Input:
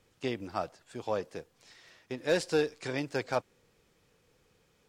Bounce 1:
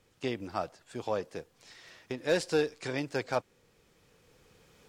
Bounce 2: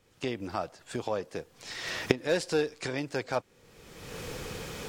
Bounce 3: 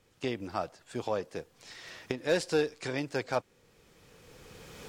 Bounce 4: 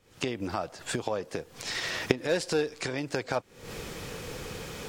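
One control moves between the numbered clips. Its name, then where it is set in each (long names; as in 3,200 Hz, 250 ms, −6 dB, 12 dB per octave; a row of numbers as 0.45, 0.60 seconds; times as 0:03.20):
camcorder AGC, rising by: 5.8, 36, 15, 89 dB per second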